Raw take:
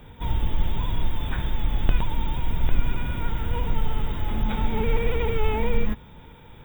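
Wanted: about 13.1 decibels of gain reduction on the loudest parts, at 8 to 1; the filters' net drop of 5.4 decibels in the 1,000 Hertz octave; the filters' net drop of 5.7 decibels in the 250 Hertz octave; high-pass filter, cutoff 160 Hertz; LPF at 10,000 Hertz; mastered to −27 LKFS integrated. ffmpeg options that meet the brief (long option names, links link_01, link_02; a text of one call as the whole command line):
ffmpeg -i in.wav -af "highpass=160,lowpass=10000,equalizer=frequency=250:width_type=o:gain=-5.5,equalizer=frequency=1000:width_type=o:gain=-6,acompressor=threshold=-42dB:ratio=8,volume=18.5dB" out.wav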